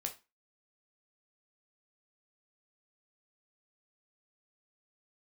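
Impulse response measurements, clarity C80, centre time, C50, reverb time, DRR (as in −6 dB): 20.5 dB, 11 ms, 13.5 dB, 0.25 s, 3.0 dB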